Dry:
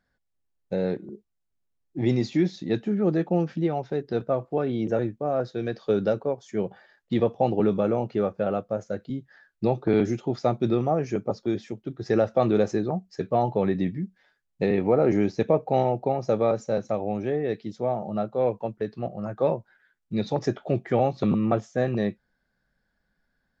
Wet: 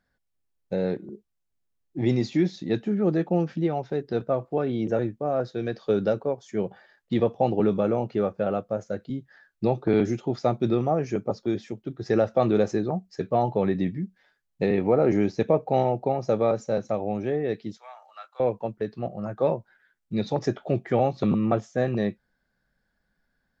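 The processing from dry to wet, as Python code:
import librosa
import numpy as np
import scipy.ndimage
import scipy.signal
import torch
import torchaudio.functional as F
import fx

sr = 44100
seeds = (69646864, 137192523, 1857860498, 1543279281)

y = fx.highpass(x, sr, hz=1200.0, slope=24, at=(17.77, 18.4))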